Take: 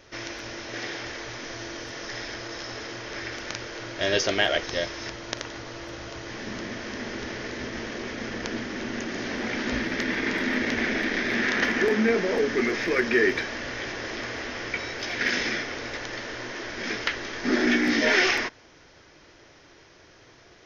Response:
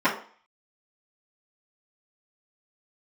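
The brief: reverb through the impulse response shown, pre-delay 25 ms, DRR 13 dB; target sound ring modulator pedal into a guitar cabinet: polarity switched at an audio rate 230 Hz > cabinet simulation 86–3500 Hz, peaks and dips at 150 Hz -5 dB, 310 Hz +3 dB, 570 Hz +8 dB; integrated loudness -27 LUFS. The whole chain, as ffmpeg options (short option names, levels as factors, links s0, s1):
-filter_complex "[0:a]asplit=2[s0][s1];[1:a]atrim=start_sample=2205,adelay=25[s2];[s1][s2]afir=irnorm=-1:irlink=0,volume=0.0299[s3];[s0][s3]amix=inputs=2:normalize=0,aeval=exprs='val(0)*sgn(sin(2*PI*230*n/s))':c=same,highpass=86,equalizer=f=150:t=q:w=4:g=-5,equalizer=f=310:t=q:w=4:g=3,equalizer=f=570:t=q:w=4:g=8,lowpass=f=3500:w=0.5412,lowpass=f=3500:w=1.3066,volume=0.944"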